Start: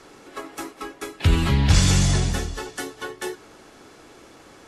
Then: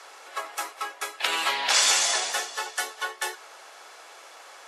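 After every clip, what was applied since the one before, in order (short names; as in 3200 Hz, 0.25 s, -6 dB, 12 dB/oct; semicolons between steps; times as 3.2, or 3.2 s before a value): HPF 610 Hz 24 dB/oct; gain +4 dB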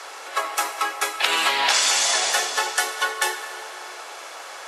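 compressor 6:1, threshold -26 dBFS, peak gain reduction 9.5 dB; on a send at -9.5 dB: reverb RT60 3.2 s, pre-delay 62 ms; on the sum: gain +9 dB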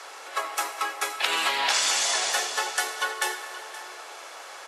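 echo 0.523 s -16 dB; gain -4.5 dB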